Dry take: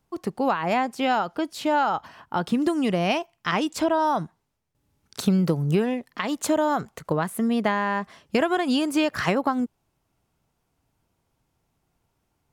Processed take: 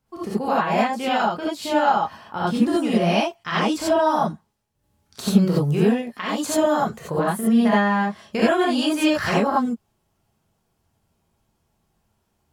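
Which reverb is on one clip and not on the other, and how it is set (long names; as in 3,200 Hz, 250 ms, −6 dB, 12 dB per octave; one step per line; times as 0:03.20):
reverb whose tail is shaped and stops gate 110 ms rising, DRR −7 dB
level −5 dB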